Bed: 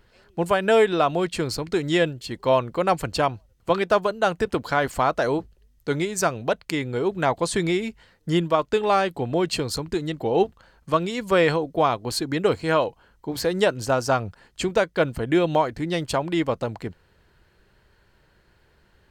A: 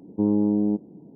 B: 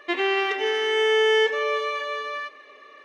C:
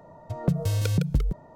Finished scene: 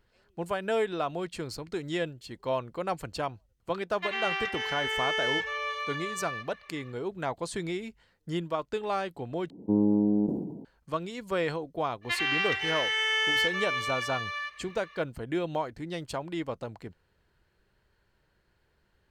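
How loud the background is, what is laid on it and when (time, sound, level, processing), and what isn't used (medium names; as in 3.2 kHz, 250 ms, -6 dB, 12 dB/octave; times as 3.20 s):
bed -10.5 dB
3.94 s: add B -5 dB, fades 0.10 s + high-pass 870 Hz
9.50 s: replace with A -3 dB + decay stretcher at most 51 dB/s
12.01 s: add B -0.5 dB, fades 0.05 s + high-pass 1.4 kHz
not used: C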